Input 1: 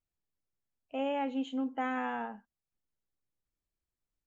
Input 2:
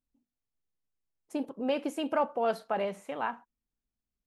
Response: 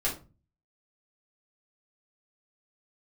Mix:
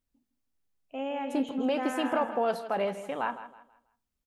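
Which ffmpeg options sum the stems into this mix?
-filter_complex "[0:a]volume=0.891,asplit=2[s0][s1];[s1]volume=0.447[s2];[1:a]alimiter=limit=0.0891:level=0:latency=1:release=77,volume=1.33,asplit=2[s3][s4];[s4]volume=0.211[s5];[s2][s5]amix=inputs=2:normalize=0,aecho=0:1:162|324|486|648:1|0.31|0.0961|0.0298[s6];[s0][s3][s6]amix=inputs=3:normalize=0"

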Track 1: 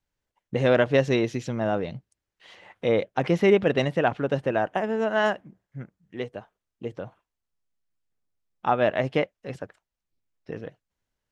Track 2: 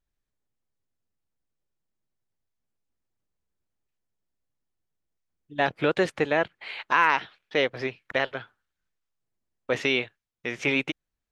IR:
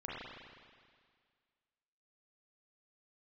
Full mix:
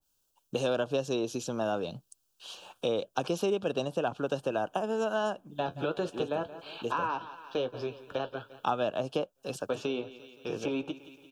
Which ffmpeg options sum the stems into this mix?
-filter_complex "[0:a]highpass=f=220:p=1,crystalizer=i=4.5:c=0,volume=1[s0];[1:a]flanger=delay=9.1:depth=3.2:regen=-52:speed=0.26:shape=triangular,volume=1.12,asplit=2[s1][s2];[s2]volume=0.119,aecho=0:1:173|346|519|692|865|1038|1211|1384:1|0.56|0.314|0.176|0.0983|0.0551|0.0308|0.0173[s3];[s0][s1][s3]amix=inputs=3:normalize=0,acrossover=split=250|1300[s4][s5][s6];[s4]acompressor=threshold=0.01:ratio=4[s7];[s5]acompressor=threshold=0.0355:ratio=4[s8];[s6]acompressor=threshold=0.0158:ratio=4[s9];[s7][s8][s9]amix=inputs=3:normalize=0,asuperstop=centerf=2000:order=4:qfactor=1.8,adynamicequalizer=threshold=0.00562:dfrequency=1800:dqfactor=0.7:tfrequency=1800:tqfactor=0.7:attack=5:release=100:ratio=0.375:range=2:mode=cutabove:tftype=highshelf"

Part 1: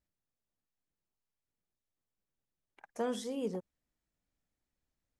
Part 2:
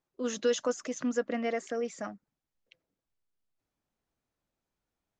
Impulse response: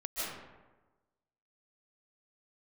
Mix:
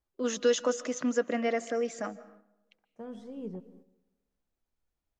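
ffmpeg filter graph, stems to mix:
-filter_complex "[0:a]aemphasis=mode=reproduction:type=riaa,volume=0.376,asplit=3[s0][s1][s2];[s0]atrim=end=0.6,asetpts=PTS-STARTPTS,afade=t=out:st=0.596:d=0.004:c=hsin[s3];[s1]atrim=start=0.6:end=1.57,asetpts=PTS-STARTPTS,volume=0[s4];[s2]atrim=start=1.57,asetpts=PTS-STARTPTS,afade=t=in:d=0.004:c=hsin[s5];[s3][s4][s5]concat=n=3:v=0:a=1,asplit=2[s6][s7];[s7]volume=0.112[s8];[1:a]highpass=170,volume=1.26,asplit=3[s9][s10][s11];[s10]volume=0.1[s12];[s11]apad=whole_len=229091[s13];[s6][s13]sidechaincompress=threshold=0.00398:ratio=8:attack=16:release=1090[s14];[2:a]atrim=start_sample=2205[s15];[s8][s12]amix=inputs=2:normalize=0[s16];[s16][s15]afir=irnorm=-1:irlink=0[s17];[s14][s9][s17]amix=inputs=3:normalize=0,agate=range=0.447:threshold=0.00178:ratio=16:detection=peak"

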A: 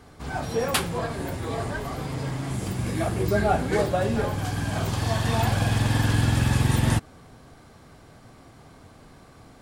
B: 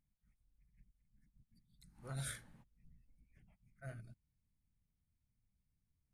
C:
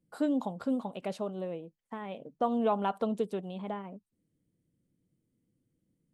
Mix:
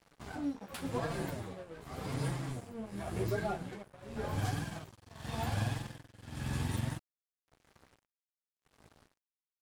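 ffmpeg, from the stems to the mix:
-filter_complex "[0:a]acompressor=threshold=0.0447:ratio=6,tremolo=f=0.9:d=0.9,volume=1.06[s0];[1:a]acrossover=split=230[s1][s2];[s2]acompressor=threshold=0.00251:ratio=6[s3];[s1][s3]amix=inputs=2:normalize=0,bass=f=250:g=5,treble=f=4000:g=9,volume=0.708,asplit=2[s4][s5];[2:a]alimiter=level_in=1.12:limit=0.0631:level=0:latency=1:release=211,volume=0.891,acrossover=split=340[s6][s7];[s7]acompressor=threshold=0.00631:ratio=6[s8];[s6][s8]amix=inputs=2:normalize=0,flanger=delay=22.5:depth=3.2:speed=0.83,adelay=150,volume=1.33[s9];[s5]apad=whole_len=277347[s10];[s9][s10]sidechaincompress=threshold=0.00112:ratio=8:attack=7.1:release=109[s11];[s0][s4][s11]amix=inputs=3:normalize=0,flanger=delay=5.7:depth=8.7:regen=7:speed=0.85:shape=sinusoidal,aeval=exprs='sgn(val(0))*max(abs(val(0))-0.00316,0)':c=same"

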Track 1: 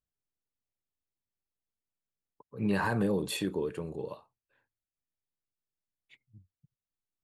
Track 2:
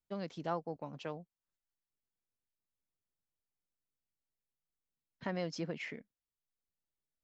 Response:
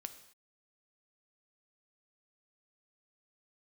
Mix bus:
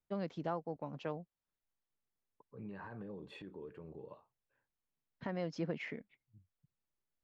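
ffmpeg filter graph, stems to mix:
-filter_complex "[0:a]lowpass=2200,acompressor=threshold=0.0112:ratio=2,alimiter=level_in=2.37:limit=0.0631:level=0:latency=1:release=109,volume=0.422,volume=0.422[s0];[1:a]lowpass=f=2000:p=1,volume=1.26[s1];[s0][s1]amix=inputs=2:normalize=0,alimiter=level_in=1.12:limit=0.0631:level=0:latency=1:release=435,volume=0.891"

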